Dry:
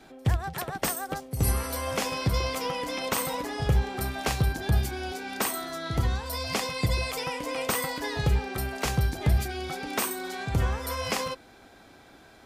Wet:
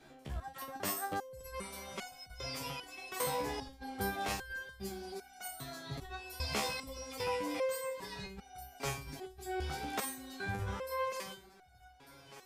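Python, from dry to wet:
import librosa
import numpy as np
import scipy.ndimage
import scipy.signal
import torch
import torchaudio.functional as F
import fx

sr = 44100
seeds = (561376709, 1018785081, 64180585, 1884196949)

y = fx.high_shelf(x, sr, hz=11000.0, db=-9.0, at=(1.51, 2.36))
y = fx.echo_feedback(y, sr, ms=1198, feedback_pct=50, wet_db=-17.5)
y = fx.over_compress(y, sr, threshold_db=-26.0, ratio=-0.5)
y = fx.resonator_held(y, sr, hz=2.5, low_hz=71.0, high_hz=730.0)
y = y * librosa.db_to_amplitude(1.0)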